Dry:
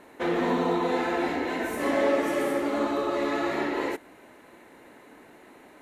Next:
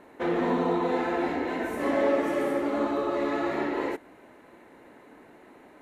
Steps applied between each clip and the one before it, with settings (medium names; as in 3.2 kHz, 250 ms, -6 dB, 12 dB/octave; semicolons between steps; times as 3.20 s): treble shelf 2.6 kHz -8 dB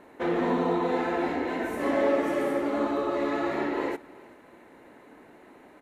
delay 377 ms -22.5 dB